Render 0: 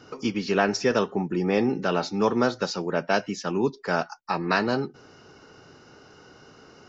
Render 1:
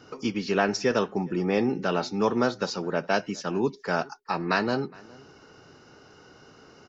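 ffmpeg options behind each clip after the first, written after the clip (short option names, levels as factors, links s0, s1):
-filter_complex "[0:a]asplit=2[s0][s1];[s1]adelay=414,volume=0.0631,highshelf=f=4000:g=-9.32[s2];[s0][s2]amix=inputs=2:normalize=0,volume=0.841"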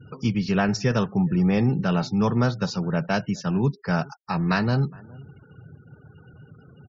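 -af "afftfilt=real='re*gte(hypot(re,im),0.00562)':imag='im*gte(hypot(re,im),0.00562)':win_size=1024:overlap=0.75,lowshelf=f=210:t=q:w=1.5:g=13"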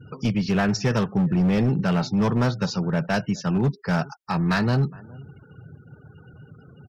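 -af "asoftclip=type=hard:threshold=0.126,volume=1.19"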